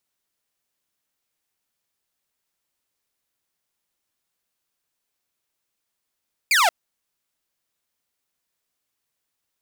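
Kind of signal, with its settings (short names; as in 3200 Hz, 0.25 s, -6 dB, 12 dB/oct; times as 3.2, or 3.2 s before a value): laser zap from 2500 Hz, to 640 Hz, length 0.18 s saw, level -12 dB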